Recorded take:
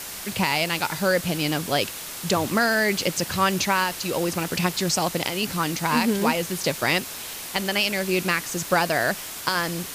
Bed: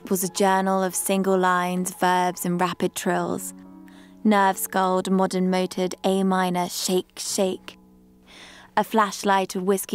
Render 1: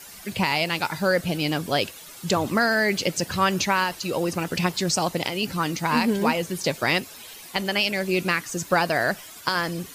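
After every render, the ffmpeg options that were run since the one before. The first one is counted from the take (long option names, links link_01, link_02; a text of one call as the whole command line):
ffmpeg -i in.wav -af "afftdn=noise_reduction=12:noise_floor=-36" out.wav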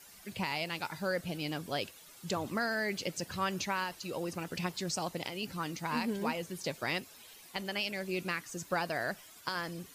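ffmpeg -i in.wav -af "volume=-12dB" out.wav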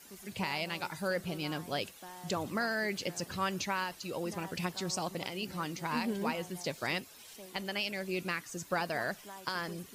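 ffmpeg -i in.wav -i bed.wav -filter_complex "[1:a]volume=-29dB[link_01];[0:a][link_01]amix=inputs=2:normalize=0" out.wav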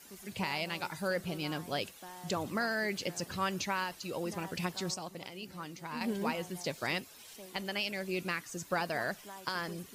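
ffmpeg -i in.wav -filter_complex "[0:a]asplit=3[link_01][link_02][link_03];[link_01]atrim=end=4.942[link_04];[link_02]atrim=start=4.938:end=6.012,asetpts=PTS-STARTPTS,volume=-6.5dB[link_05];[link_03]atrim=start=6.008[link_06];[link_04][link_05]acrossfade=duration=0.004:curve1=hsin:curve2=hsin[link_07];[link_07][link_06]acrossfade=duration=0.004:curve1=hsin:curve2=hsin" out.wav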